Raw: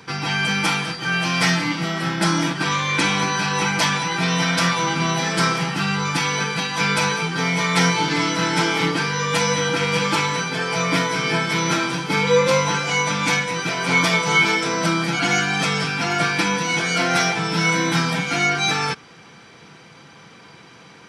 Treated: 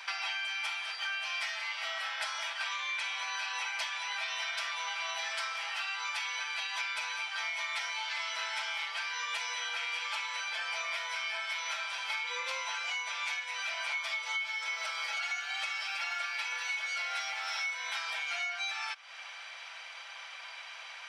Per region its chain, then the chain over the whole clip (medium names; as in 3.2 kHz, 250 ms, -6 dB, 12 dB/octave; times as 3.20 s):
14.08–17.74 s: comb 3.6 ms, depth 53% + bit-crushed delay 320 ms, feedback 35%, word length 7-bit, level -9 dB
whole clip: steep high-pass 570 Hz 72 dB/octave; peaking EQ 2.7 kHz +9.5 dB 1.5 oct; compression 10:1, threshold -29 dBFS; trim -4.5 dB